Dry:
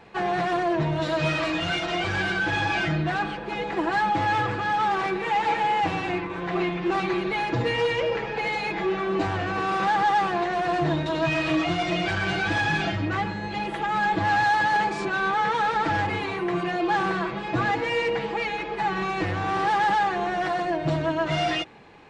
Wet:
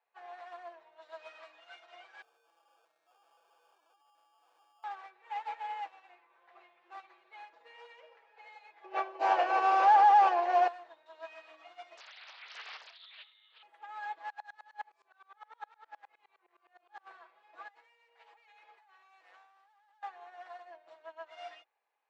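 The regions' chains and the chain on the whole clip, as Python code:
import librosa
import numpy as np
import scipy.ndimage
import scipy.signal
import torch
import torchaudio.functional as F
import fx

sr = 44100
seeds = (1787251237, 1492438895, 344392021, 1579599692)

y = fx.chain(x, sr, fx.over_compress(threshold_db=-29.0, ratio=-0.5),
    fx.sample_hold(seeds[0], rate_hz=2000.0, jitter_pct=0),
    fx.clip_hard(threshold_db=-33.0), at=(2.22, 4.84))
y = fx.chain(y, sr, fx.cabinet(low_hz=280.0, low_slope=24, high_hz=6600.0, hz=(350.0, 580.0, 860.0, 1300.0, 1900.0, 3700.0), db=(8, 7, 4, -5, -6, -8)),
    fx.env_flatten(amount_pct=100), at=(8.84, 10.68))
y = fx.chain(y, sr, fx.freq_invert(carrier_hz=3800),
    fx.doppler_dist(depth_ms=0.95), at=(11.97, 13.63))
y = fx.chain(y, sr, fx.doubler(ms=25.0, db=-4),
    fx.tremolo_decay(direction='swelling', hz=9.7, depth_db=25), at=(14.3, 17.07))
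y = fx.chain(y, sr, fx.highpass(hz=560.0, slope=6),
    fx.high_shelf(hz=7400.0, db=9.5),
    fx.over_compress(threshold_db=-33.0, ratio=-1.0), at=(17.68, 20.03))
y = scipy.signal.sosfilt(scipy.signal.butter(4, 640.0, 'highpass', fs=sr, output='sos'), y)
y = fx.tilt_eq(y, sr, slope=-2.0)
y = fx.upward_expand(y, sr, threshold_db=-33.0, expansion=2.5)
y = y * librosa.db_to_amplitude(-4.0)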